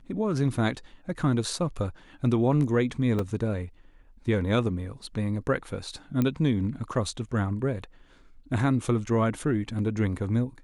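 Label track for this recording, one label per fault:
3.190000	3.190000	drop-out 3.2 ms
6.220000	6.220000	click −14 dBFS

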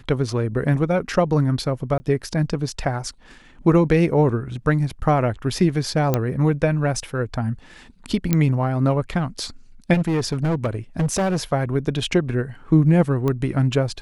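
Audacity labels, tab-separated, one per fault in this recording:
1.980000	2.000000	drop-out 20 ms
6.140000	6.140000	click −6 dBFS
8.330000	8.330000	click −5 dBFS
9.930000	11.370000	clipping −17 dBFS
13.280000	13.280000	click −12 dBFS

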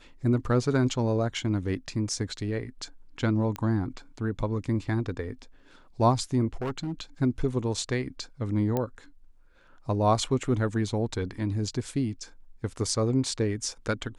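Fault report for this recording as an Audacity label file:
3.560000	3.560000	click −19 dBFS
6.620000	7.010000	clipping −27 dBFS
8.770000	8.770000	click −15 dBFS

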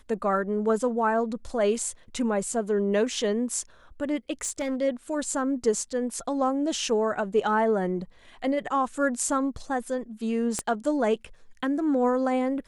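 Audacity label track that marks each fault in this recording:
4.410000	4.760000	clipping −24 dBFS
10.590000	10.590000	click −14 dBFS

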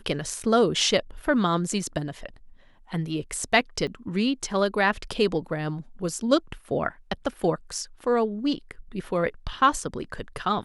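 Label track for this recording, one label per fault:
3.870000	3.880000	drop-out 5.1 ms

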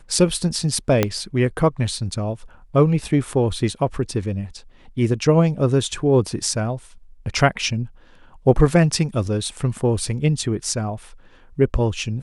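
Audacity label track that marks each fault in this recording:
1.030000	1.030000	click −3 dBFS

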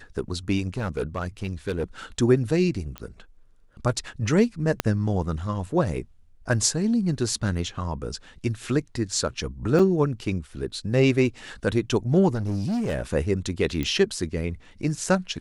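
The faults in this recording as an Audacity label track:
0.680000	1.840000	clipping −22 dBFS
2.980000	2.980000	click −19 dBFS
4.800000	4.800000	click −7 dBFS
9.790000	9.790000	drop-out 4.8 ms
12.340000	13.020000	clipping −22.5 dBFS
13.830000	13.830000	click −15 dBFS

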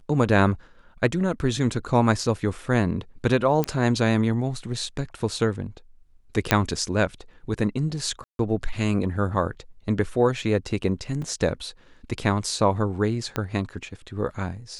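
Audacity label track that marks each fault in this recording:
3.640000	3.640000	click −10 dBFS
6.510000	6.510000	click −2 dBFS
8.240000	8.390000	drop-out 152 ms
11.220000	11.220000	drop-out 3.7 ms
13.360000	13.360000	click −12 dBFS

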